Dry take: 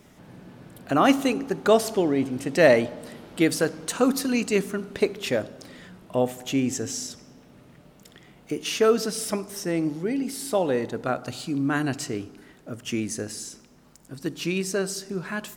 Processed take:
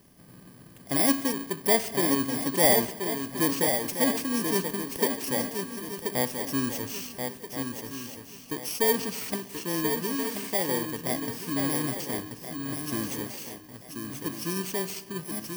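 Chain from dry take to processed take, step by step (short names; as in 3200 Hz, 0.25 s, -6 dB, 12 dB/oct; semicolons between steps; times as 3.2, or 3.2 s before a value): FFT order left unsorted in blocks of 32 samples; swung echo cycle 1.377 s, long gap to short 3:1, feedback 32%, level -6 dB; gain -4.5 dB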